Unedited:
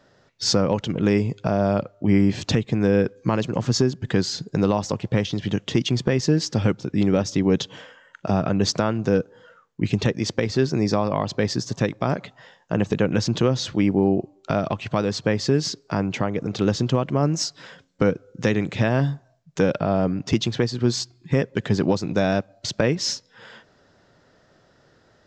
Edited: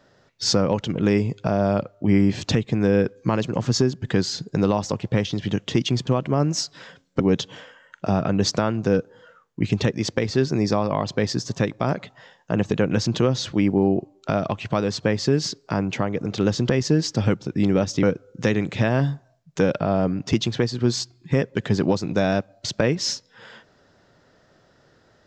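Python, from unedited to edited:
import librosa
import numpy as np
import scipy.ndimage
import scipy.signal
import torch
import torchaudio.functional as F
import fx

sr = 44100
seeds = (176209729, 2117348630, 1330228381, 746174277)

y = fx.edit(x, sr, fx.swap(start_s=6.07, length_s=1.34, other_s=16.9, other_length_s=1.13), tone=tone)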